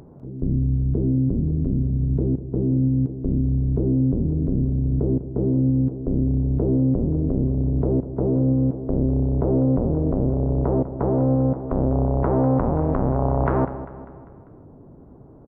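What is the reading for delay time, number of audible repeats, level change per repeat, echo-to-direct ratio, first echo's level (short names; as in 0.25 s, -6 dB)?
0.198 s, 4, -5.5 dB, -12.5 dB, -14.0 dB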